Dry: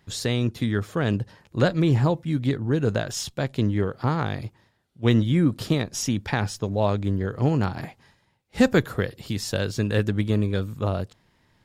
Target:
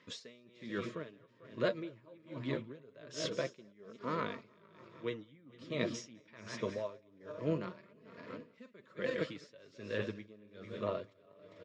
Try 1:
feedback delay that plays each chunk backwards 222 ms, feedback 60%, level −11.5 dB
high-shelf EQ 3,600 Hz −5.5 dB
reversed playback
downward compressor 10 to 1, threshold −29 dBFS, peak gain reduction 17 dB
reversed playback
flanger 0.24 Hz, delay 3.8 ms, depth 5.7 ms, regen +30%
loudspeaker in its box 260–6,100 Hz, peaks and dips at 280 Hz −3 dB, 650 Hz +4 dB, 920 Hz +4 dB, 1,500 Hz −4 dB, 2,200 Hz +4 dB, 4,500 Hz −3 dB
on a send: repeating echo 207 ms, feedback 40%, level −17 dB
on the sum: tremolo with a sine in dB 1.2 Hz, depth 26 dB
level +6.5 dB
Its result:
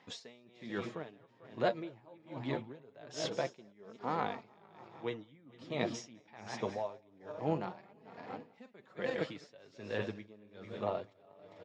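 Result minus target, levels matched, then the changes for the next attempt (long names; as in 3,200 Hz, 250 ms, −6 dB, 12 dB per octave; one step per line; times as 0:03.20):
1,000 Hz band +5.0 dB
add after feedback delay that plays each chunk backwards: Butterworth band-reject 790 Hz, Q 2.2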